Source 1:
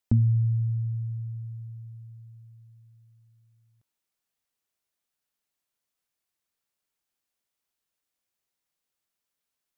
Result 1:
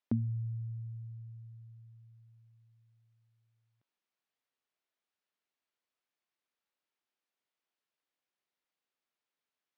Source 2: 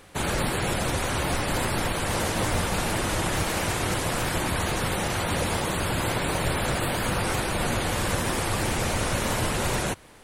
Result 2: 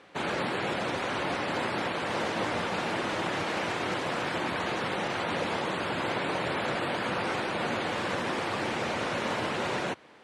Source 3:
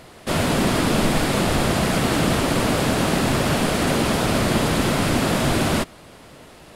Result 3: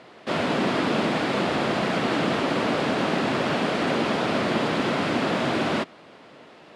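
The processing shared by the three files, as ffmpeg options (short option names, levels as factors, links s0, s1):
-af "highpass=210,lowpass=3800,volume=0.794"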